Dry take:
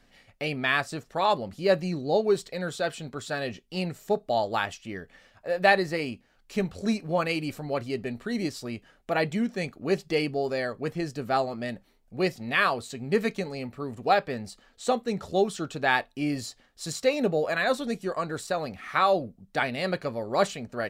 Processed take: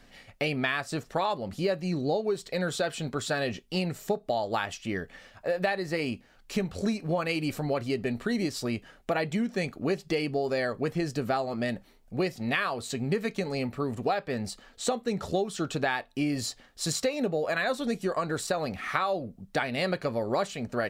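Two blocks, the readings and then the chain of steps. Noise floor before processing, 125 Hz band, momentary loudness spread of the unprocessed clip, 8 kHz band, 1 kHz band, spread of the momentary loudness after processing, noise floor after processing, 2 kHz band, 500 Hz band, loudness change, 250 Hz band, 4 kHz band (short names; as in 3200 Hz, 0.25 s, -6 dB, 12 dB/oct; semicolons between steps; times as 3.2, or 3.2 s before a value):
-63 dBFS, +1.5 dB, 11 LU, +3.0 dB, -4.5 dB, 5 LU, -58 dBFS, -3.5 dB, -2.5 dB, -2.0 dB, 0.0 dB, -1.0 dB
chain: compressor 10:1, threshold -30 dBFS, peak gain reduction 16 dB; gain +5.5 dB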